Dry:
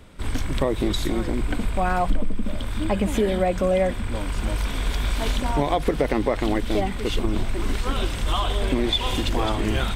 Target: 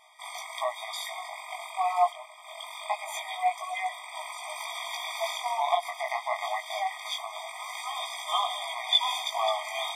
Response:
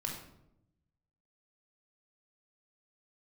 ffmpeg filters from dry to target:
-af "flanger=delay=16:depth=6.6:speed=0.24,afftfilt=real='re*eq(mod(floor(b*sr/1024/630),2),1)':imag='im*eq(mod(floor(b*sr/1024/630),2),1)':win_size=1024:overlap=0.75,volume=3.5dB"

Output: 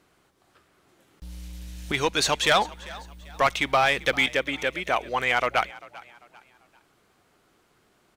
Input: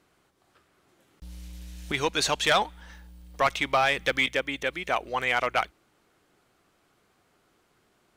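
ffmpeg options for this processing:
ffmpeg -i in.wav -filter_complex "[0:a]aeval=exprs='0.211*(cos(1*acos(clip(val(0)/0.211,-1,1)))-cos(1*PI/2))+0.00422*(cos(5*acos(clip(val(0)/0.211,-1,1)))-cos(5*PI/2))':channel_layout=same,asplit=4[link_01][link_02][link_03][link_04];[link_02]adelay=394,afreqshift=50,volume=-20dB[link_05];[link_03]adelay=788,afreqshift=100,volume=-28.6dB[link_06];[link_04]adelay=1182,afreqshift=150,volume=-37.3dB[link_07];[link_01][link_05][link_06][link_07]amix=inputs=4:normalize=0,volume=2dB" out.wav

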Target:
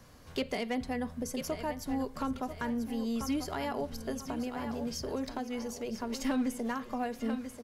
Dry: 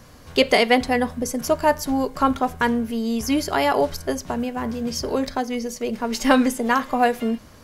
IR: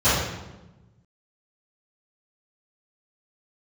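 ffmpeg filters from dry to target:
-filter_complex "[0:a]aecho=1:1:989|1978|2967:0.251|0.0703|0.0197,acrossover=split=270[link_01][link_02];[link_02]acompressor=threshold=-28dB:ratio=2.5[link_03];[link_01][link_03]amix=inputs=2:normalize=0,asoftclip=type=hard:threshold=-16dB,volume=-9dB"

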